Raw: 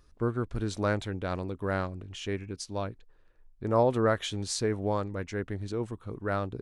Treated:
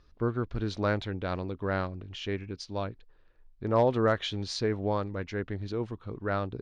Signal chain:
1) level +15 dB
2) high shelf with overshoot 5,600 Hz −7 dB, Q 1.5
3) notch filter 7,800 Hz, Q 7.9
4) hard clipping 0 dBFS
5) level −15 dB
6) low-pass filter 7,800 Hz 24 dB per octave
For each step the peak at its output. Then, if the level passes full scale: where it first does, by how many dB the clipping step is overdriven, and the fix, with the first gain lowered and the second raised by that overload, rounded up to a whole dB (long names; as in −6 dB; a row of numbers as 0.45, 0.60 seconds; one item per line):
+3.0, +3.0, +3.0, 0.0, −15.0, −15.0 dBFS
step 1, 3.0 dB
step 1 +12 dB, step 5 −12 dB